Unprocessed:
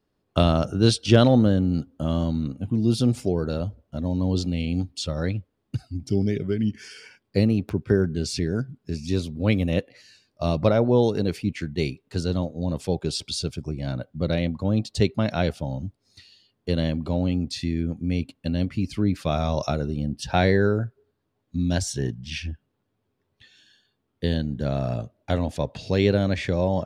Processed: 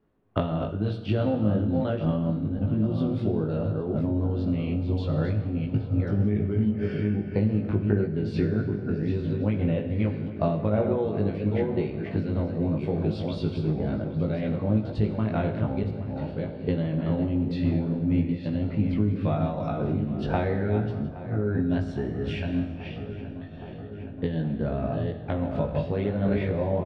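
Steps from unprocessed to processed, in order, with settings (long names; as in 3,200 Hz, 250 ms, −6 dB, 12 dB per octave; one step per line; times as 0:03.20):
delay that plays each chunk backwards 514 ms, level −7 dB
high-shelf EQ 6,800 Hz −7 dB
mains-hum notches 60/120 Hz
downward compressor, threshold −27 dBFS, peak gain reduction 16 dB
high-frequency loss of the air 490 metres
double-tracking delay 19 ms −2.5 dB
on a send: feedback echo with a low-pass in the loop 821 ms, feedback 81%, low-pass 2,700 Hz, level −14.5 dB
on the sum: four-comb reverb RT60 1.4 s, combs from 30 ms, DRR 8 dB
amplitude modulation by smooth noise, depth 60%
level +7 dB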